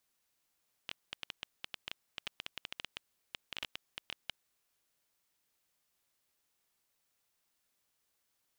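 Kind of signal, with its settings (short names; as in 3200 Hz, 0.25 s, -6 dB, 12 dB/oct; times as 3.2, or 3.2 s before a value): random clicks 9/s -21.5 dBFS 3.80 s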